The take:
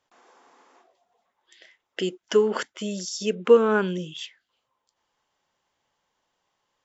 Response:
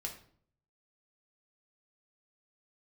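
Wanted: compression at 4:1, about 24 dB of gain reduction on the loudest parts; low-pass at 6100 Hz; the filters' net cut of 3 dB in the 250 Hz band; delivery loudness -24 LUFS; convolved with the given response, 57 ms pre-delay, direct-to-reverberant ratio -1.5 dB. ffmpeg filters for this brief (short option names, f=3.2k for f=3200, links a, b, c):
-filter_complex "[0:a]lowpass=6.1k,equalizer=f=250:t=o:g=-4,acompressor=threshold=-41dB:ratio=4,asplit=2[a][b];[1:a]atrim=start_sample=2205,adelay=57[c];[b][c]afir=irnorm=-1:irlink=0,volume=2.5dB[d];[a][d]amix=inputs=2:normalize=0,volume=15dB"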